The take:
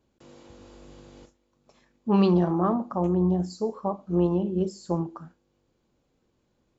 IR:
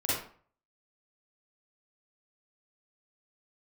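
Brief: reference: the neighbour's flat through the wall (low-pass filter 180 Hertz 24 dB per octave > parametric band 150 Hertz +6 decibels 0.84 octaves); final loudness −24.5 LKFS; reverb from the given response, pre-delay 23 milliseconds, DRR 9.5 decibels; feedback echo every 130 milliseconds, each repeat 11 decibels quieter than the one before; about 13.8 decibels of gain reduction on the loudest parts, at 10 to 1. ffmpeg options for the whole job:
-filter_complex "[0:a]acompressor=threshold=-31dB:ratio=10,aecho=1:1:130|260|390:0.282|0.0789|0.0221,asplit=2[link_01][link_02];[1:a]atrim=start_sample=2205,adelay=23[link_03];[link_02][link_03]afir=irnorm=-1:irlink=0,volume=-18dB[link_04];[link_01][link_04]amix=inputs=2:normalize=0,lowpass=frequency=180:width=0.5412,lowpass=frequency=180:width=1.3066,equalizer=frequency=150:width_type=o:width=0.84:gain=6,volume=14.5dB"

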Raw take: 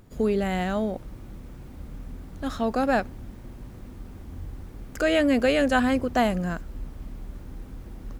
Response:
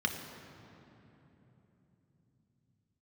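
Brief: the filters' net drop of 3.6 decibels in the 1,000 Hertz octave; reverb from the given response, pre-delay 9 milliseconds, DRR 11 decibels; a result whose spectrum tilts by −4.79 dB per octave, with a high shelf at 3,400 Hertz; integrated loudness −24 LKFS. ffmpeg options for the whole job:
-filter_complex "[0:a]equalizer=frequency=1000:width_type=o:gain=-6.5,highshelf=frequency=3400:gain=9,asplit=2[link_01][link_02];[1:a]atrim=start_sample=2205,adelay=9[link_03];[link_02][link_03]afir=irnorm=-1:irlink=0,volume=-17.5dB[link_04];[link_01][link_04]amix=inputs=2:normalize=0,volume=1dB"

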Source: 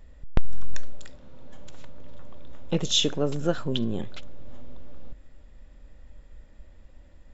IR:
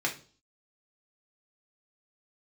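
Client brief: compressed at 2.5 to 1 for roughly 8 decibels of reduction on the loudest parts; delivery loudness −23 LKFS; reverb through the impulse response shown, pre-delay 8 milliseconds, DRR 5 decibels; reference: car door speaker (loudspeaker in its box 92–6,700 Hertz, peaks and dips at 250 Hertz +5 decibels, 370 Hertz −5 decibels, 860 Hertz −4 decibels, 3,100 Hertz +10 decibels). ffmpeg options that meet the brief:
-filter_complex "[0:a]acompressor=threshold=-23dB:ratio=2.5,asplit=2[link_01][link_02];[1:a]atrim=start_sample=2205,adelay=8[link_03];[link_02][link_03]afir=irnorm=-1:irlink=0,volume=-12.5dB[link_04];[link_01][link_04]amix=inputs=2:normalize=0,highpass=92,equalizer=frequency=250:width_type=q:width=4:gain=5,equalizer=frequency=370:width_type=q:width=4:gain=-5,equalizer=frequency=860:width_type=q:width=4:gain=-4,equalizer=frequency=3100:width_type=q:width=4:gain=10,lowpass=frequency=6700:width=0.5412,lowpass=frequency=6700:width=1.3066,volume=4dB"

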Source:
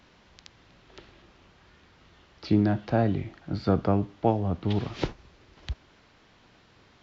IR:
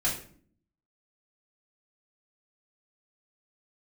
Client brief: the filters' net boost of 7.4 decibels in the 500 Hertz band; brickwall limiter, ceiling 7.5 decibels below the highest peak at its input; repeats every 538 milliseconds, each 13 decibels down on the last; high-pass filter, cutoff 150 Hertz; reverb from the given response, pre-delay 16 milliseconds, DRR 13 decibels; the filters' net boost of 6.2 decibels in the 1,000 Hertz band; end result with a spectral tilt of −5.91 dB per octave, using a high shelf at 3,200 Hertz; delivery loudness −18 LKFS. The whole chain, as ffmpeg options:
-filter_complex "[0:a]highpass=150,equalizer=frequency=500:width_type=o:gain=8,equalizer=frequency=1000:width_type=o:gain=5.5,highshelf=frequency=3200:gain=-7.5,alimiter=limit=-11dB:level=0:latency=1,aecho=1:1:538|1076|1614:0.224|0.0493|0.0108,asplit=2[link_01][link_02];[1:a]atrim=start_sample=2205,adelay=16[link_03];[link_02][link_03]afir=irnorm=-1:irlink=0,volume=-21dB[link_04];[link_01][link_04]amix=inputs=2:normalize=0,volume=8dB"

